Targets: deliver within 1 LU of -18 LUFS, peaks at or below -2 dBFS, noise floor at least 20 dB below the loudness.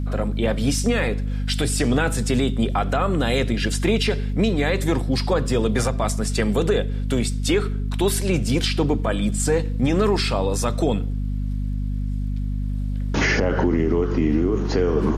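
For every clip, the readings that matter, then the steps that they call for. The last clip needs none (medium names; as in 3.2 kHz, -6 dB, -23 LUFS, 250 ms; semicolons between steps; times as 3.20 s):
tick rate 24 per s; hum 50 Hz; highest harmonic 250 Hz; hum level -22 dBFS; loudness -22.0 LUFS; peak level -8.5 dBFS; loudness target -18.0 LUFS
-> de-click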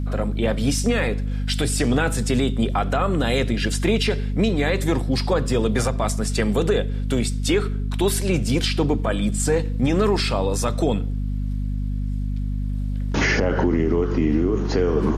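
tick rate 0.066 per s; hum 50 Hz; highest harmonic 250 Hz; hum level -22 dBFS
-> de-hum 50 Hz, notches 5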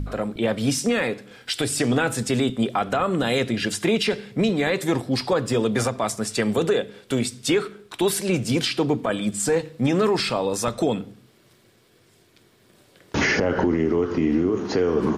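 hum not found; loudness -23.0 LUFS; peak level -10.0 dBFS; loudness target -18.0 LUFS
-> trim +5 dB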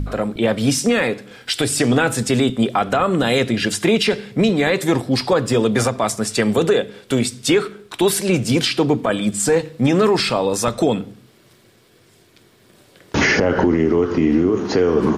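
loudness -18.0 LUFS; peak level -5.0 dBFS; noise floor -53 dBFS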